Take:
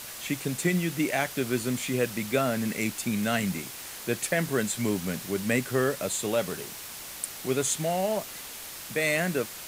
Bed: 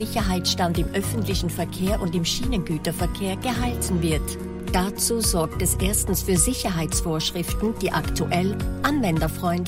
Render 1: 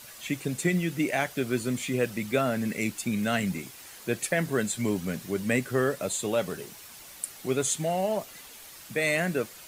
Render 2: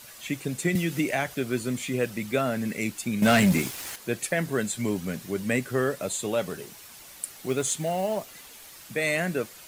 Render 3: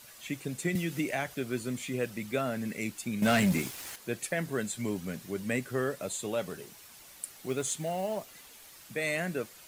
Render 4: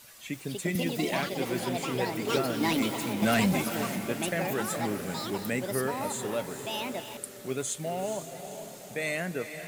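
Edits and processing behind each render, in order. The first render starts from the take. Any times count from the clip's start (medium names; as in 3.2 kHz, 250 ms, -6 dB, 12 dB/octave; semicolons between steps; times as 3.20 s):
noise reduction 8 dB, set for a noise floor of -41 dBFS
0.75–1.35 s: three bands compressed up and down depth 100%; 3.22–3.96 s: waveshaping leveller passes 3; 7.17–8.86 s: companded quantiser 6-bit
trim -5.5 dB
echo that smears into a reverb 455 ms, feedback 55%, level -9 dB; ever faster or slower copies 331 ms, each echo +6 st, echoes 2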